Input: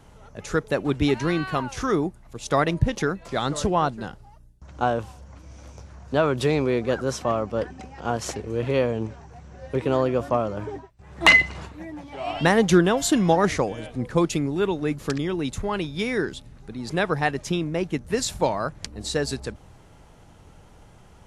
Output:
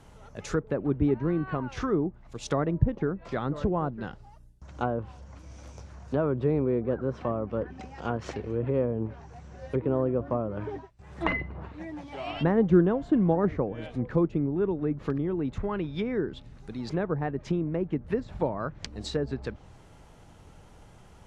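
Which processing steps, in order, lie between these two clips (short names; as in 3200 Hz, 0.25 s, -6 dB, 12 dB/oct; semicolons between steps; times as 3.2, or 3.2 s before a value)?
dynamic EQ 760 Hz, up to -6 dB, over -35 dBFS, Q 1.4; treble ducked by the level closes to 880 Hz, closed at -22 dBFS; gain -2 dB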